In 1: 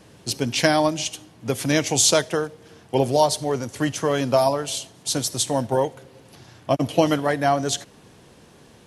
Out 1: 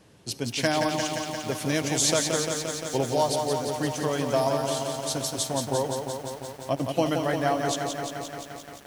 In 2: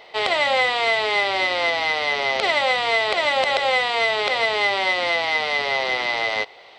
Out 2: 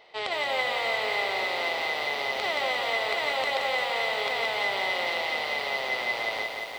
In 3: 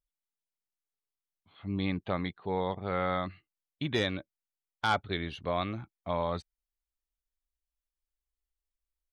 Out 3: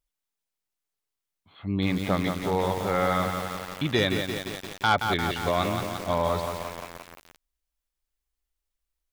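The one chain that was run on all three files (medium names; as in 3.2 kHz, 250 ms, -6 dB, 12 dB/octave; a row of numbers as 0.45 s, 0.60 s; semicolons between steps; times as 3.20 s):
bit-crushed delay 174 ms, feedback 80%, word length 7-bit, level -5 dB; normalise loudness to -27 LUFS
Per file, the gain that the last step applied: -6.5 dB, -9.5 dB, +5.5 dB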